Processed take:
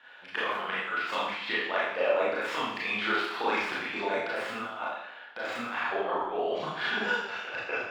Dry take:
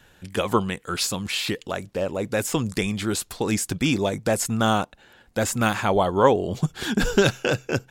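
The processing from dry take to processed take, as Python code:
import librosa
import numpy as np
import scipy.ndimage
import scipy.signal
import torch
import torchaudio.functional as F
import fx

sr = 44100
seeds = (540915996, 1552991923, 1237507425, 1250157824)

y = fx.tracing_dist(x, sr, depth_ms=0.055)
y = scipy.signal.sosfilt(scipy.signal.butter(2, 1000.0, 'highpass', fs=sr, output='sos'), y)
y = fx.high_shelf(y, sr, hz=5300.0, db=-5.5)
y = fx.over_compress(y, sr, threshold_db=-34.0, ratio=-0.5)
y = fx.air_absorb(y, sr, metres=360.0)
y = fx.rev_schroeder(y, sr, rt60_s=0.78, comb_ms=26, drr_db=-7.5)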